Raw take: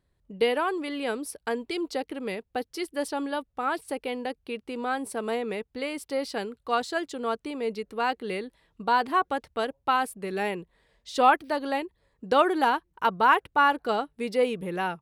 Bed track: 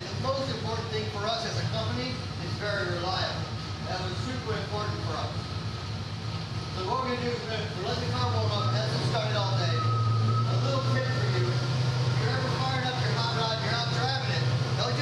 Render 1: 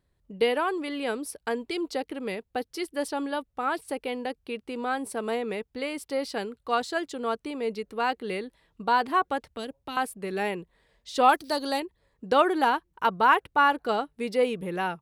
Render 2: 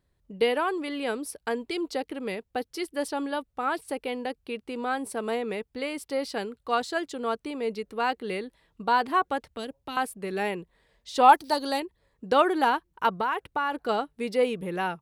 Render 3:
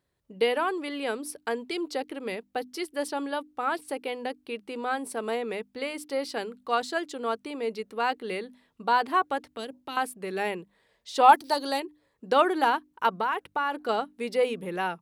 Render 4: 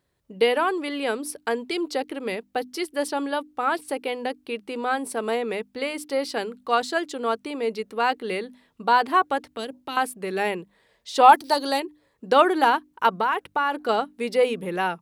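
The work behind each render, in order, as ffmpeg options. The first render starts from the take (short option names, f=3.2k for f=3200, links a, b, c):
-filter_complex "[0:a]asettb=1/sr,asplit=3[a][b][c];[a]atrim=end=9.484[d];[b]atrim=start=9.48:end=9.97,asetpts=PTS-STARTPTS,afade=t=in:d=0.004:c=qsin,afade=t=out:st=0.486:d=0.004:c=qsin,acrossover=split=370|3000[e][f][g];[f]acompressor=threshold=-39dB:ratio=6:attack=3.2:release=140:knee=2.83:detection=peak[h];[e][h][g]amix=inputs=3:normalize=0[i];[c]atrim=start=9.966[j];[d][i]acrossfade=d=0.004:c1=hsin:c2=qsin[k];[k][j]acrossfade=d=0.004:c1=qsin:c2=hsin,asettb=1/sr,asplit=3[l][m][n];[l]atrim=end=11.294[o];[m]atrim=start=11.29:end=11.8,asetpts=PTS-STARTPTS,afade=t=in:d=0.004:c=qsin,afade=t=out:st=0.506:d=0.004:c=qsin,highshelf=f=3.4k:t=q:w=1.5:g=10[p];[n]atrim=start=11.796[q];[o][p]acrossfade=d=0.004:c1=hsin:c2=qsin[r];[r][q]acrossfade=d=0.004:c1=qsin:c2=hsin"
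-filter_complex "[0:a]asettb=1/sr,asplit=3[a][b][c];[a]atrim=end=11.114[d];[b]atrim=start=11.11:end=11.54,asetpts=PTS-STARTPTS,afade=t=in:d=0.004:c=qsin,afade=t=out:st=0.426:d=0.004:c=qsin,equalizer=f=880:w=6.7:g=10.5[e];[c]atrim=start=11.536[f];[d][e]acrossfade=d=0.004:c1=hsin:c2=qsin[g];[g][f]acrossfade=d=0.004:c1=qsin:c2=hsin,asettb=1/sr,asplit=3[h][i][j];[h]atrim=end=13.104[k];[i]atrim=start=13.1:end=13.89,asetpts=PTS-STARTPTS,afade=t=in:d=0.004:c=qsin,afade=t=out:st=0.786:d=0.004:c=qsin,acompressor=threshold=-23dB:ratio=6:attack=3.2:release=140:knee=1:detection=peak[l];[j]atrim=start=13.886[m];[k][l]acrossfade=d=0.004:c1=hsin:c2=qsin[n];[n][m]acrossfade=d=0.004:c1=qsin:c2=hsin"
-af "highpass=f=190:p=1,bandreject=f=50:t=h:w=6,bandreject=f=100:t=h:w=6,bandreject=f=150:t=h:w=6,bandreject=f=200:t=h:w=6,bandreject=f=250:t=h:w=6,bandreject=f=300:t=h:w=6"
-af "volume=4.5dB,alimiter=limit=-3dB:level=0:latency=1"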